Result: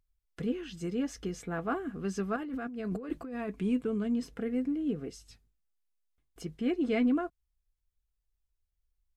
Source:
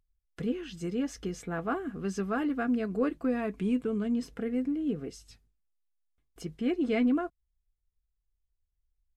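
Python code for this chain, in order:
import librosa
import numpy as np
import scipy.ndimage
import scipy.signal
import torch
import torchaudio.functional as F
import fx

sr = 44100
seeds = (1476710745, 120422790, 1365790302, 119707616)

y = fx.over_compress(x, sr, threshold_db=-36.0, ratio=-1.0, at=(2.36, 3.49))
y = y * librosa.db_to_amplitude(-1.0)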